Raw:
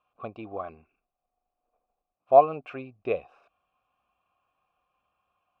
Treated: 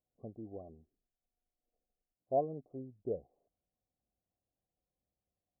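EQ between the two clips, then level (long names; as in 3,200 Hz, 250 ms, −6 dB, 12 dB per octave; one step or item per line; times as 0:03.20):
Gaussian smoothing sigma 18 samples
−3.0 dB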